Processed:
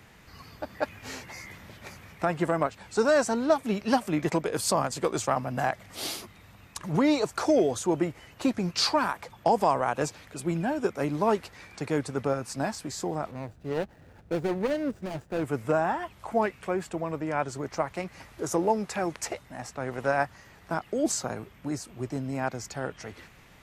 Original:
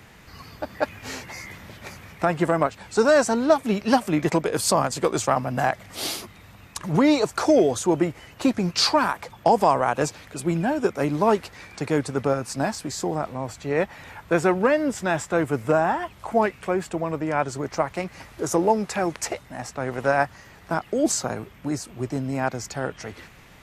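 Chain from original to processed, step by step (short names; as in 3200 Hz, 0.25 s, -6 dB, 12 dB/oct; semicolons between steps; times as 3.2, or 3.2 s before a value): 13.31–15.43 median filter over 41 samples; gain -5 dB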